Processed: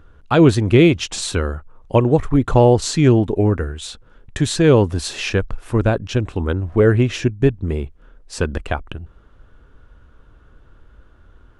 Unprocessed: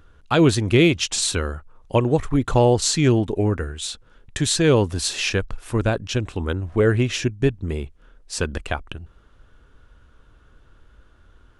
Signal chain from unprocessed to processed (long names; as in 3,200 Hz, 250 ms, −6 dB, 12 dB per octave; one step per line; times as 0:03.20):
high-shelf EQ 2,300 Hz −9 dB
level +4.5 dB